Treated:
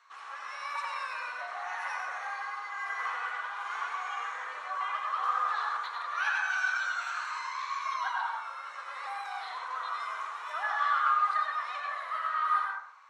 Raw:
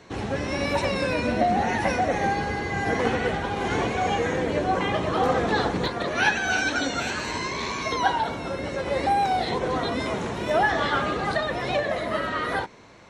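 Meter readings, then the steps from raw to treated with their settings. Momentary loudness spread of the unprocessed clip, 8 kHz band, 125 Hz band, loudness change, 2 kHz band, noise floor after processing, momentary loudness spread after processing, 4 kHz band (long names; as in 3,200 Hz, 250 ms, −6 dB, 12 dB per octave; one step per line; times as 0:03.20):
6 LU, −13.5 dB, below −40 dB, −7.5 dB, −5.5 dB, −44 dBFS, 10 LU, −12.5 dB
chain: four-pole ladder high-pass 1,100 Hz, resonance 75%
dense smooth reverb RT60 0.63 s, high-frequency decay 0.35×, pre-delay 80 ms, DRR −0.5 dB
level −3 dB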